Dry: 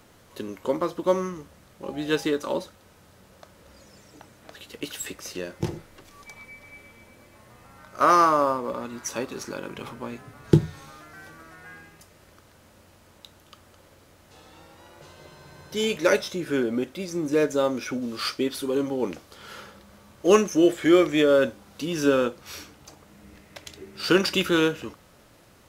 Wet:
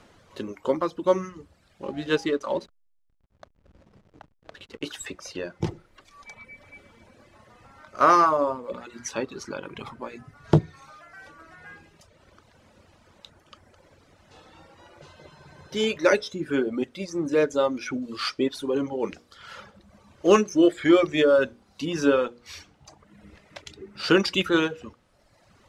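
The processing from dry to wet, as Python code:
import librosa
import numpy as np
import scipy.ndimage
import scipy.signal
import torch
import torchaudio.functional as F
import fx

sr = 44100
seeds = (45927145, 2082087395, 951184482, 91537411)

y = fx.hum_notches(x, sr, base_hz=60, count=8)
y = fx.dereverb_blind(y, sr, rt60_s=1.2)
y = fx.backlash(y, sr, play_db=-44.0, at=(1.86, 4.85))
y = fx.air_absorb(y, sr, metres=66.0)
y = fx.transformer_sat(y, sr, knee_hz=380.0)
y = F.gain(torch.from_numpy(y), 2.0).numpy()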